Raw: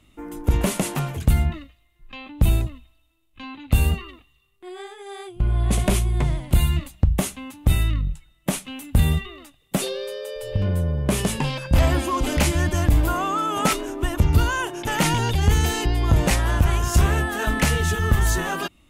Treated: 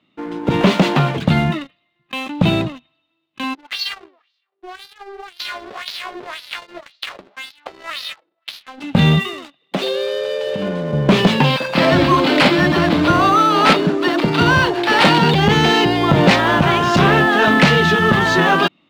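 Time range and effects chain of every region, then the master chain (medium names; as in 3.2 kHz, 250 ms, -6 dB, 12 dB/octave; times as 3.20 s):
3.53–8.80 s: formants flattened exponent 0.1 + compression 3:1, threshold -30 dBFS + LFO band-pass sine 1.9 Hz 330–4700 Hz
9.33–10.93 s: high-pass 210 Hz + compression 2.5:1, threshold -32 dBFS
11.56–15.34 s: three bands offset in time highs, mids, lows 40/210 ms, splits 180/840 Hz + careless resampling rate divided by 6×, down none, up hold
whole clip: Chebyshev band-pass 160–4100 Hz, order 3; level rider gain up to 5 dB; waveshaping leveller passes 2; trim +1.5 dB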